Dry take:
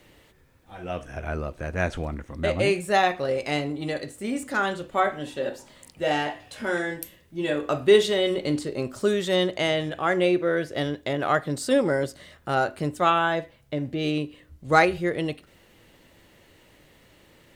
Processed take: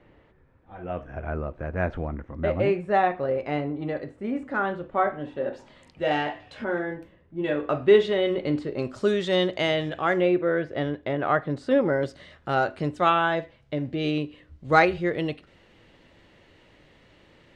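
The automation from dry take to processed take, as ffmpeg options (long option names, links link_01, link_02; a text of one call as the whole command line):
ffmpeg -i in.wav -af "asetnsamples=nb_out_samples=441:pad=0,asendcmd='5.53 lowpass f 3300;6.64 lowpass f 1400;7.44 lowpass f 2500;8.79 lowpass f 4700;10.21 lowpass f 2200;12.03 lowpass f 4300',lowpass=1600" out.wav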